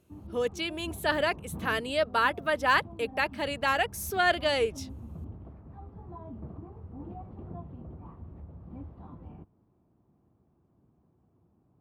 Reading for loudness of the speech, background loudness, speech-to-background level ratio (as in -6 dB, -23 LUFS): -28.5 LUFS, -45.0 LUFS, 16.5 dB